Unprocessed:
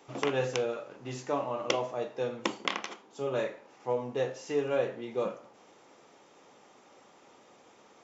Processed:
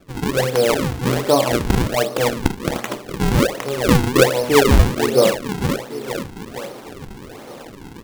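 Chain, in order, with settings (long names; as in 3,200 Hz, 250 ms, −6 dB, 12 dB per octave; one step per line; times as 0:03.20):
on a send: repeating echo 463 ms, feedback 51%, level −9.5 dB
on the sum: automatic gain control gain up to 11.5 dB
dynamic equaliser 640 Hz, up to +4 dB, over −32 dBFS, Q 2.4
in parallel at 0 dB: downward compressor, threshold −34 dBFS, peak gain reduction 22.5 dB
on the sum: low-shelf EQ 380 Hz +7.5 dB
sample-and-hold swept by an LFO 42×, swing 160% 1.3 Hz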